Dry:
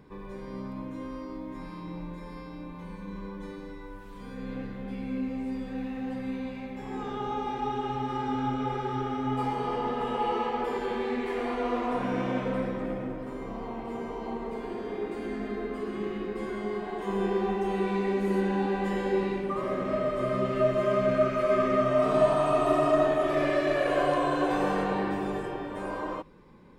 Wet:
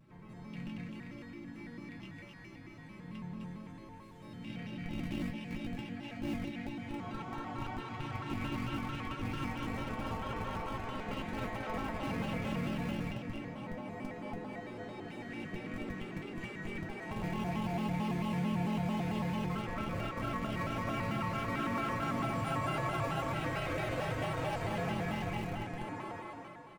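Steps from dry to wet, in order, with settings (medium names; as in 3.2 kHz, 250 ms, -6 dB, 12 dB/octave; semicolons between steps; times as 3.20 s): rattle on loud lows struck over -34 dBFS, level -29 dBFS; two-band feedback delay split 320 Hz, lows 157 ms, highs 262 ms, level -3 dB; reverberation RT60 1.0 s, pre-delay 3 ms, DRR 3.5 dB; harmony voices -4 st -9 dB, +3 st -9 dB, +12 st -17 dB; peaking EQ 170 Hz +10.5 dB 0.54 oct; in parallel at -7.5 dB: Schmitt trigger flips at -21.5 dBFS; on the sum: bass shelf 100 Hz +6.5 dB; feedback comb 110 Hz, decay 0.16 s, harmonics odd, mix 90%; compression 2:1, threshold -33 dBFS, peak gain reduction 4.5 dB; vibrato with a chosen wave square 4.5 Hz, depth 160 cents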